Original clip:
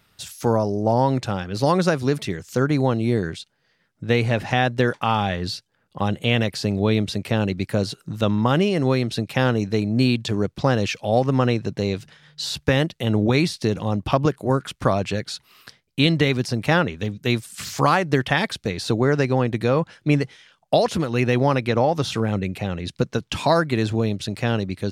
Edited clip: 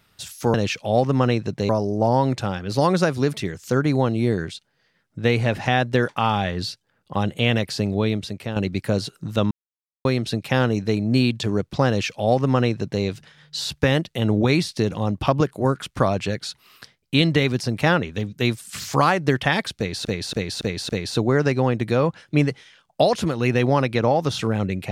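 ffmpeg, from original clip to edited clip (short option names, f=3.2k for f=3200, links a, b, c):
-filter_complex "[0:a]asplit=10[a][b][c][d][e][f][g][h][i][j];[a]atrim=end=0.542[k];[b]atrim=start=10.728:end=11.882[l];[c]atrim=start=0.538:end=7.41,asetpts=PTS-STARTPTS,afade=t=out:st=6.092:d=0.78:silence=0.375837[m];[d]atrim=start=7.41:end=8.36,asetpts=PTS-STARTPTS,afade=t=in:d=0.004:c=hsin:silence=0.375837,afade=t=out:st=0.946:d=0.004:c=hsin[n];[e]atrim=start=8.36:end=8.9,asetpts=PTS-STARTPTS,volume=0[o];[f]atrim=start=8.9:end=18.902,asetpts=PTS-STARTPTS,afade=t=in:d=0.004:c=hsin[p];[g]atrim=start=18.618:end=18.902[q];[h]atrim=start=18.618:end=18.902[r];[i]atrim=start=18.618:end=18.902[s];[j]atrim=start=18.618[t];[k][l]acrossfade=d=0.004:c1=hsin:c2=hsin[u];[m][n][o][p]concat=n=4:v=0:a=1[v];[u][v]acrossfade=d=0.004:c1=hsin:c2=hsin[w];[w][q]acrossfade=d=0.004:c1=hsin:c2=hsin[x];[x][r]acrossfade=d=0.004:c1=hsin:c2=hsin[y];[y][s]acrossfade=d=0.004:c1=hsin:c2=hsin[z];[z][t]acrossfade=d=0.004:c1=hsin:c2=hsin"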